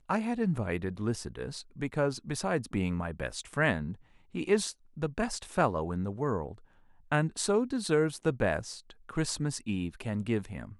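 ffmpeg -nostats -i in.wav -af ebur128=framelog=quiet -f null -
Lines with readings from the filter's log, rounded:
Integrated loudness:
  I:         -31.9 LUFS
  Threshold: -42.1 LUFS
Loudness range:
  LRA:         2.1 LU
  Threshold: -51.9 LUFS
  LRA low:   -33.0 LUFS
  LRA high:  -30.9 LUFS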